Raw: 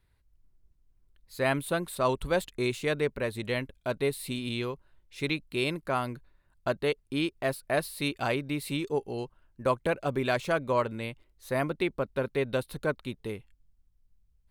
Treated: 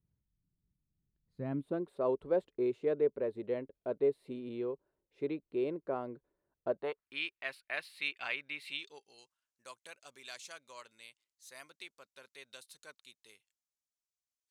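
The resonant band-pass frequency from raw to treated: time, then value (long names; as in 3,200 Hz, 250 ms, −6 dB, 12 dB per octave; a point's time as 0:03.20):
resonant band-pass, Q 2
0:01.41 170 Hz
0:01.90 430 Hz
0:06.68 430 Hz
0:07.18 2,400 Hz
0:08.65 2,400 Hz
0:09.17 6,600 Hz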